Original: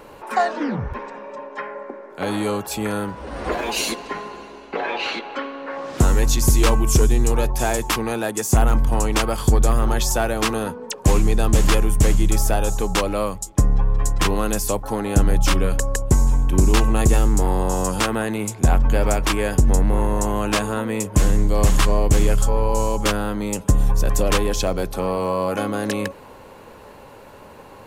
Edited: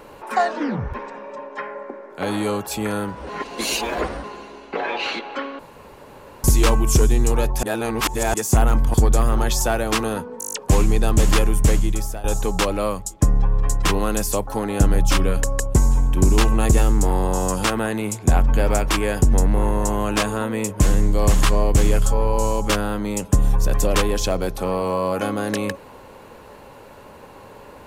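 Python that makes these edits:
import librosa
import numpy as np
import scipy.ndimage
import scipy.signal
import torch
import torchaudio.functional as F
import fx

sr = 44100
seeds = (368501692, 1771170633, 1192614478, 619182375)

y = fx.edit(x, sr, fx.reverse_span(start_s=3.29, length_s=0.95),
    fx.room_tone_fill(start_s=5.59, length_s=0.85),
    fx.reverse_span(start_s=7.63, length_s=0.71),
    fx.cut(start_s=8.94, length_s=0.5),
    fx.stutter(start_s=10.89, slice_s=0.02, count=8),
    fx.fade_out_to(start_s=12.04, length_s=0.56, floor_db=-17.0), tone=tone)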